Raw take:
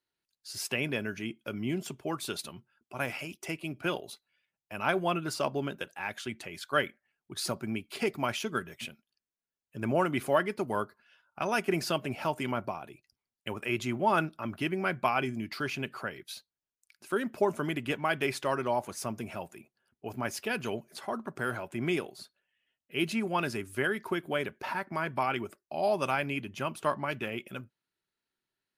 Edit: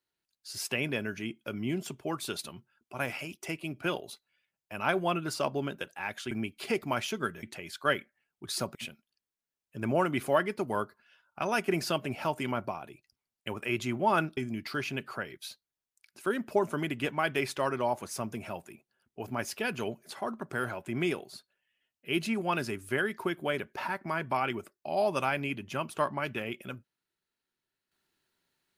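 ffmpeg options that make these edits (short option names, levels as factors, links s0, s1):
-filter_complex "[0:a]asplit=5[s0][s1][s2][s3][s4];[s0]atrim=end=6.312[s5];[s1]atrim=start=7.628:end=8.752[s6];[s2]atrim=start=6.308:end=7.632[s7];[s3]atrim=start=8.748:end=14.372[s8];[s4]atrim=start=15.228[s9];[s5][s6]acrossfade=d=0.004:c1=hsin:c2=hsin[s10];[s10][s7]acrossfade=d=0.004:c1=hsin:c2=hsin[s11];[s11][s8]acrossfade=d=0.004:c1=hsin:c2=hsin[s12];[s12][s9]acrossfade=d=0.004:c1=hsin:c2=hsin"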